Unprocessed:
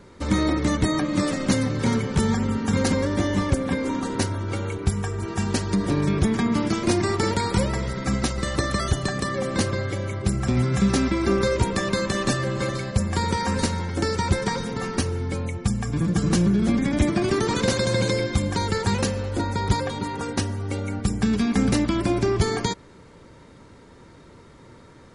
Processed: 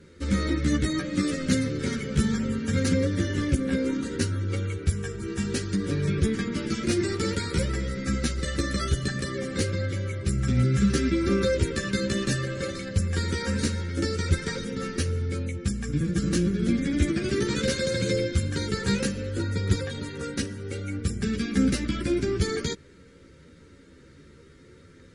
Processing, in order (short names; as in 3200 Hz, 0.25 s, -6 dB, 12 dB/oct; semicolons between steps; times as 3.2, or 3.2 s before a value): added harmonics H 4 -26 dB, 6 -29 dB, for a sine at -10 dBFS; chorus voices 2, 0.66 Hz, delay 13 ms, depth 2 ms; band shelf 840 Hz -14.5 dB 1 oct